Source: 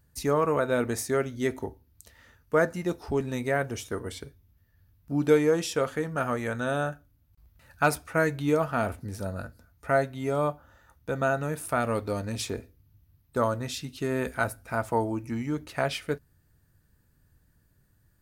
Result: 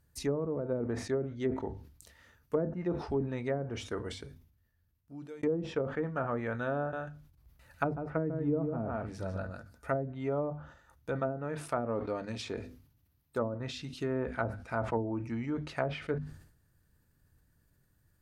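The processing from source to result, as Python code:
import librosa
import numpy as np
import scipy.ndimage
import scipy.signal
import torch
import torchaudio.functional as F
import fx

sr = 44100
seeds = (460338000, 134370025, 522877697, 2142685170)

y = fx.echo_single(x, sr, ms=148, db=-4.5, at=(6.78, 9.9))
y = fx.low_shelf(y, sr, hz=110.0, db=-8.5, at=(11.19, 13.6))
y = fx.edit(y, sr, fx.fade_out_span(start_s=4.1, length_s=1.33), tone=tone)
y = fx.hum_notches(y, sr, base_hz=50, count=5)
y = fx.env_lowpass_down(y, sr, base_hz=390.0, full_db=-21.0)
y = fx.sustainer(y, sr, db_per_s=89.0)
y = F.gain(torch.from_numpy(y), -4.0).numpy()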